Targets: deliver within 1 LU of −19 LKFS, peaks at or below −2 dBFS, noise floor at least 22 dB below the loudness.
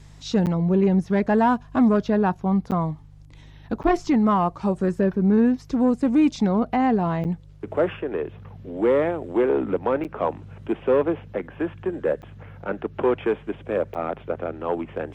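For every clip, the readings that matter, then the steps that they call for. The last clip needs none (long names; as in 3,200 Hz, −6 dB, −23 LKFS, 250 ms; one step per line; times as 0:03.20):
number of dropouts 7; longest dropout 8.6 ms; mains hum 50 Hz; hum harmonics up to 150 Hz; level of the hum −44 dBFS; integrated loudness −23.0 LKFS; sample peak −9.0 dBFS; target loudness −19.0 LKFS
→ repair the gap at 0:00.46/0:02.71/0:03.83/0:07.24/0:10.04/0:12.22/0:13.94, 8.6 ms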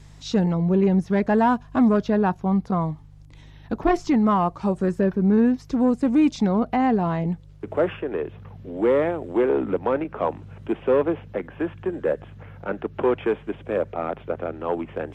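number of dropouts 0; mains hum 50 Hz; hum harmonics up to 150 Hz; level of the hum −44 dBFS
→ hum removal 50 Hz, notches 3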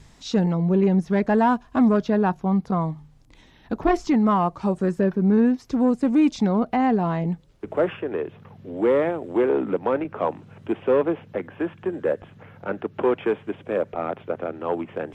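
mains hum none found; integrated loudness −23.0 LKFS; sample peak −9.0 dBFS; target loudness −19.0 LKFS
→ level +4 dB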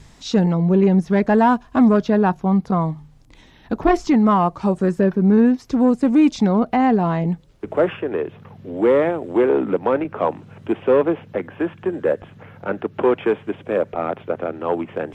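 integrated loudness −19.0 LKFS; sample peak −5.0 dBFS; background noise floor −48 dBFS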